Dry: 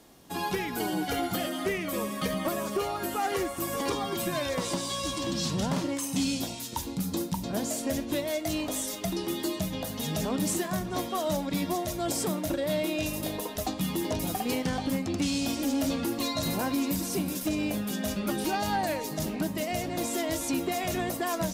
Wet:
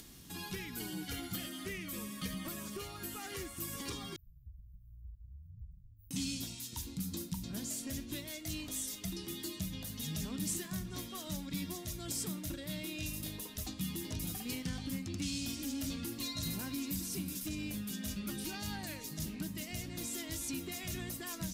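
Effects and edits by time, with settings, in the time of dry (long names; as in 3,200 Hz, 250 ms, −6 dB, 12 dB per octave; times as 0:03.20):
0:04.16–0:06.11: inverse Chebyshev band-stop filter 400–8,200 Hz, stop band 80 dB
whole clip: guitar amp tone stack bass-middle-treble 6-0-2; upward compression, threshold −53 dBFS; level +9 dB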